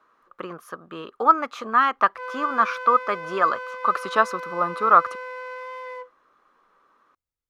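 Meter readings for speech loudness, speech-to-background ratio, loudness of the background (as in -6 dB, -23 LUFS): -21.5 LUFS, 13.0 dB, -34.5 LUFS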